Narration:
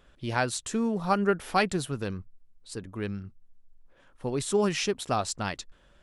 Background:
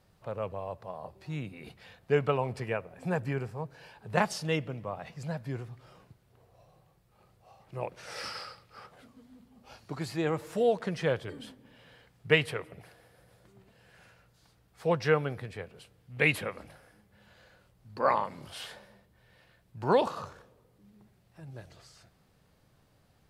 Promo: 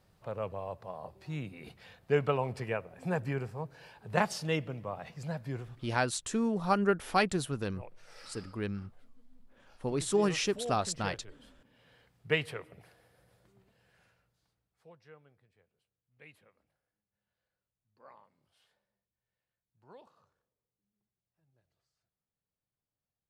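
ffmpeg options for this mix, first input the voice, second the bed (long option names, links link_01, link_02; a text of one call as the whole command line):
ffmpeg -i stem1.wav -i stem2.wav -filter_complex "[0:a]adelay=5600,volume=-2.5dB[link_01];[1:a]volume=6.5dB,afade=type=out:start_time=5.58:duration=0.59:silence=0.251189,afade=type=in:start_time=11.44:duration=0.6:silence=0.398107,afade=type=out:start_time=13.29:duration=1.63:silence=0.0595662[link_02];[link_01][link_02]amix=inputs=2:normalize=0" out.wav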